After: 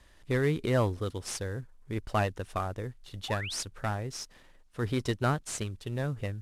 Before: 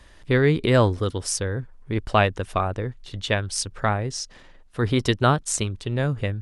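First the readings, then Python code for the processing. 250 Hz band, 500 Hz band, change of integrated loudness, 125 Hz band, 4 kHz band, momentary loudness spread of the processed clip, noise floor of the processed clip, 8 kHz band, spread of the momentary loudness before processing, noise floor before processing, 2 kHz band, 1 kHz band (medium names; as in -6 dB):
-8.5 dB, -9.0 dB, -9.0 dB, -8.5 dB, -9.5 dB, 12 LU, -58 dBFS, -10.5 dB, 12 LU, -50 dBFS, -9.5 dB, -9.5 dB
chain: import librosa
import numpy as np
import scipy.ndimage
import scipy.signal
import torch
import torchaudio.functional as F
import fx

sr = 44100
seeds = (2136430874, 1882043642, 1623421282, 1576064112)

y = fx.cvsd(x, sr, bps=64000)
y = fx.spec_paint(y, sr, seeds[0], shape='rise', start_s=3.28, length_s=0.34, low_hz=720.0, high_hz=7700.0, level_db=-30.0)
y = y * 10.0 ** (-8.5 / 20.0)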